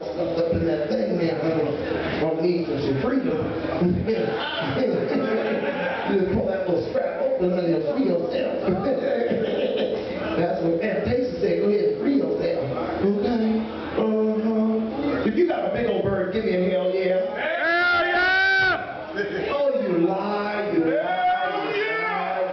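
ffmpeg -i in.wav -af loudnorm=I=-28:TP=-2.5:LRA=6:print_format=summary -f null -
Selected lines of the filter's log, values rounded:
Input Integrated:    -23.1 LUFS
Input True Peak:     -10.9 dBTP
Input LRA:             2.7 LU
Input Threshold:     -33.1 LUFS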